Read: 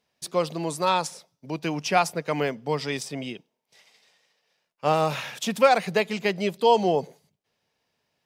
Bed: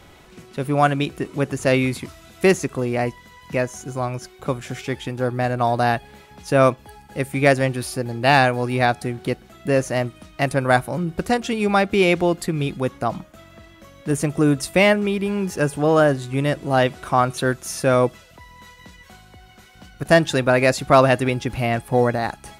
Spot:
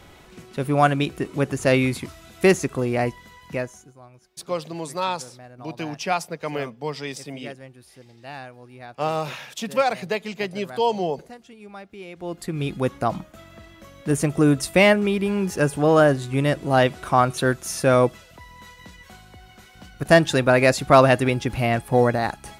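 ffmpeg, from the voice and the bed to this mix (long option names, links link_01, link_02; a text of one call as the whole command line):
ffmpeg -i stem1.wav -i stem2.wav -filter_complex "[0:a]adelay=4150,volume=-2.5dB[link_01];[1:a]volume=22dB,afade=type=out:start_time=3.29:duration=0.64:silence=0.0794328,afade=type=in:start_time=12.15:duration=0.7:silence=0.0749894[link_02];[link_01][link_02]amix=inputs=2:normalize=0" out.wav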